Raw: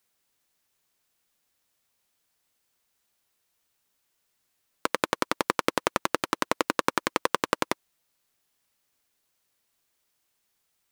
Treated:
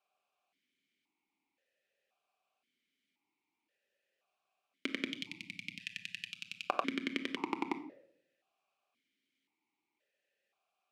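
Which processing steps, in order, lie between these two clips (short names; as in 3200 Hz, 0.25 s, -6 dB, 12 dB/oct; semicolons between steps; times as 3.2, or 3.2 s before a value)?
5.09–6.69 inverse Chebyshev band-stop 380–1100 Hz, stop band 60 dB; compressor, threshold -25 dBFS, peak gain reduction 8.5 dB; reverb RT60 0.70 s, pre-delay 5 ms, DRR 6.5 dB; vowel sequencer 1.9 Hz; gain +9 dB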